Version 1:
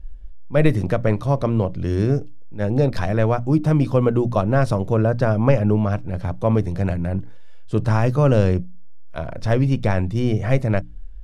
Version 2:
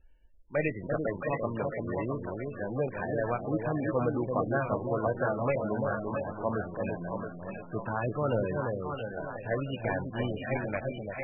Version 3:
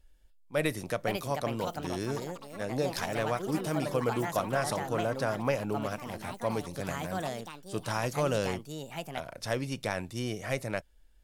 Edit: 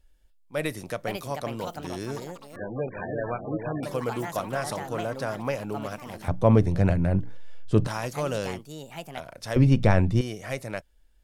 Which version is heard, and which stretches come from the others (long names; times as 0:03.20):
3
0:02.56–0:03.83: punch in from 2
0:06.28–0:07.87: punch in from 1
0:09.56–0:10.21: punch in from 1